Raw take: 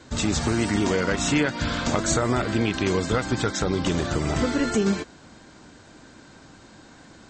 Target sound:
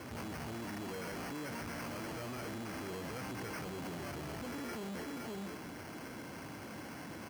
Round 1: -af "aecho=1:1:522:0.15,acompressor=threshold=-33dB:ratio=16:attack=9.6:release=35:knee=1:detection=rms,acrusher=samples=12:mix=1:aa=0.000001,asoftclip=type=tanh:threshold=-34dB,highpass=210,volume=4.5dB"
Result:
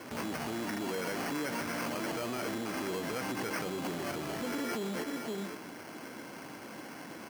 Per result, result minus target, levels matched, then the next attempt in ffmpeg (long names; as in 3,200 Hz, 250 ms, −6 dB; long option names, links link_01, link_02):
125 Hz band −5.5 dB; soft clipping: distortion −7 dB
-af "aecho=1:1:522:0.15,acompressor=threshold=-33dB:ratio=16:attack=9.6:release=35:knee=1:detection=rms,acrusher=samples=12:mix=1:aa=0.000001,asoftclip=type=tanh:threshold=-34dB,highpass=83,volume=4.5dB"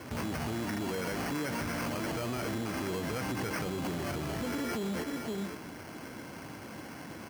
soft clipping: distortion −7 dB
-af "aecho=1:1:522:0.15,acompressor=threshold=-33dB:ratio=16:attack=9.6:release=35:knee=1:detection=rms,acrusher=samples=12:mix=1:aa=0.000001,asoftclip=type=tanh:threshold=-45dB,highpass=83,volume=4.5dB"